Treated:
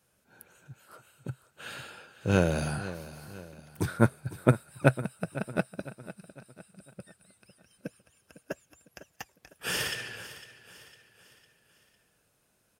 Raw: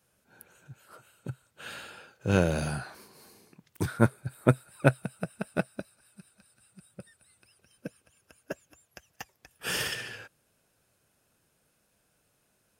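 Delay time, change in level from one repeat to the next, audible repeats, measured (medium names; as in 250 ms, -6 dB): 504 ms, -7.0 dB, 3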